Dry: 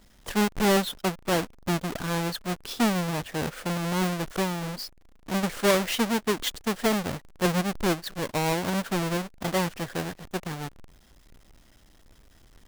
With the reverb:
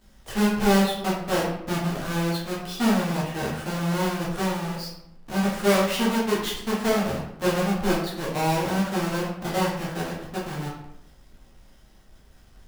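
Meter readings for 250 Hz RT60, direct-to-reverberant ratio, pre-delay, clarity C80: 0.90 s, -6.5 dB, 8 ms, 6.5 dB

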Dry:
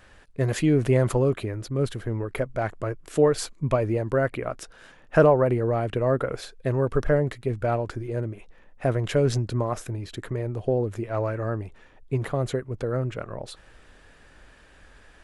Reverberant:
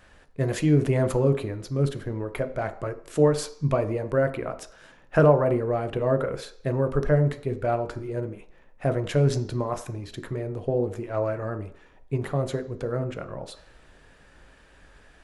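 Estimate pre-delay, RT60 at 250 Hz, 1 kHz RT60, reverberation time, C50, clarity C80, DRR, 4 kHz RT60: 12 ms, 0.50 s, 0.55 s, 0.55 s, 14.0 dB, 16.5 dB, 8.0 dB, 0.60 s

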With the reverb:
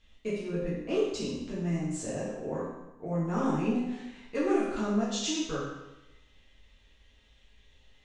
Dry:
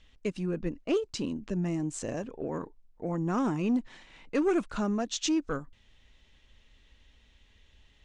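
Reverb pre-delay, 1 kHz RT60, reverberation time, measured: 8 ms, 0.95 s, 1.0 s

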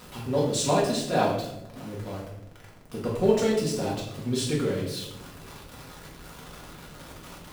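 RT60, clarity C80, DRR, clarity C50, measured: 0.90 s, 6.5 dB, -4.5 dB, 4.0 dB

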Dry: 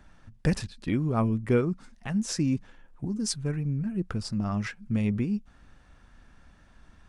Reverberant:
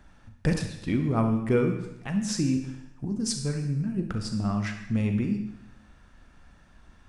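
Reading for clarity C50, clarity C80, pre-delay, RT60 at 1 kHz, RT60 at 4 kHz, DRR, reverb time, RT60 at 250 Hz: 6.5 dB, 9.5 dB, 33 ms, 0.90 s, 0.85 s, 5.0 dB, 0.85 s, 0.90 s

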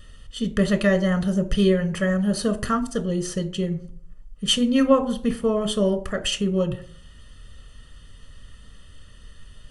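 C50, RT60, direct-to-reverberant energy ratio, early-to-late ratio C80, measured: 15.0 dB, 0.55 s, 9.0 dB, 19.0 dB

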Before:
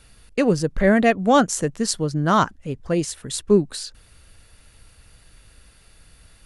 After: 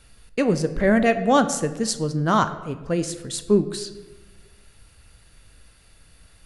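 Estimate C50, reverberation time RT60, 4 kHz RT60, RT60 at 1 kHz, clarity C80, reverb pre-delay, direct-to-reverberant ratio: 12.5 dB, 1.3 s, 0.70 s, 1.1 s, 14.0 dB, 15 ms, 10.0 dB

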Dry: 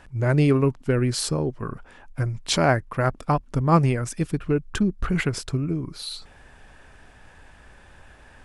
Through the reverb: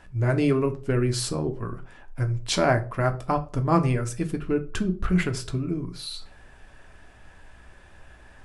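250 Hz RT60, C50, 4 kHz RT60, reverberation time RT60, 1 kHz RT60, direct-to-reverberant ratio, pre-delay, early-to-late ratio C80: 0.40 s, 16.5 dB, 0.30 s, 0.40 s, 0.35 s, 5.5 dB, 3 ms, 21.0 dB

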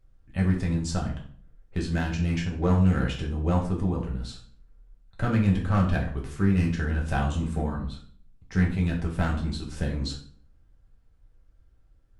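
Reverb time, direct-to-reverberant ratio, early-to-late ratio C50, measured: 0.50 s, -2.5 dB, 8.0 dB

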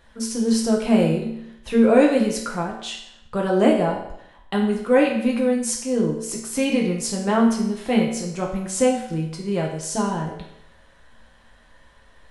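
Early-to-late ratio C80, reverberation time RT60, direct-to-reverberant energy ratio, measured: 7.5 dB, 0.80 s, -1.5 dB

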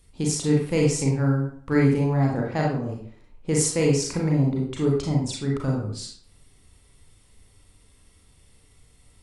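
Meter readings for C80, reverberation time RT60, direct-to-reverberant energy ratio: 7.5 dB, 0.50 s, -2.5 dB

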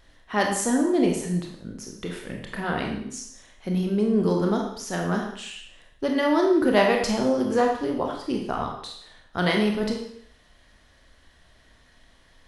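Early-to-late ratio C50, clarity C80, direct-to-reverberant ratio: 4.5 dB, 7.5 dB, 1.0 dB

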